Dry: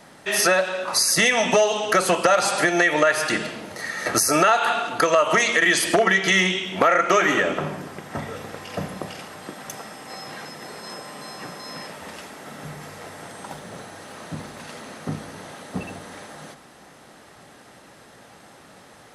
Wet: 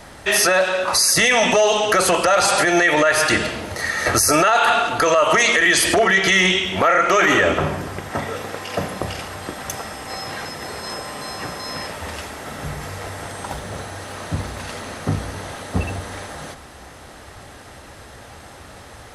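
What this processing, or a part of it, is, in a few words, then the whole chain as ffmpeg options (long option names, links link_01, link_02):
car stereo with a boomy subwoofer: -filter_complex "[0:a]asettb=1/sr,asplit=3[link_01][link_02][link_03];[link_01]atrim=end=8.104[link_04];[link_02]atrim=start=8.1:end=9.01,asetpts=PTS-STARTPTS,afade=type=in:duration=0.004:curve=qsin,afade=type=out:start_time=0.906:duration=0.004:curve=qsin,highpass=180[link_05];[link_03]atrim=start=9.006[link_06];[link_04][link_05]acrossfade=duration=0.004:curve1=hsin:curve2=qsin[link_07];[link_07][link_06]acrossfade=duration=0.004:curve1=qsin:curve2=hsin,lowshelf=frequency=110:width_type=q:width=1.5:gain=13,alimiter=limit=-14dB:level=0:latency=1:release=11,volume=7dB"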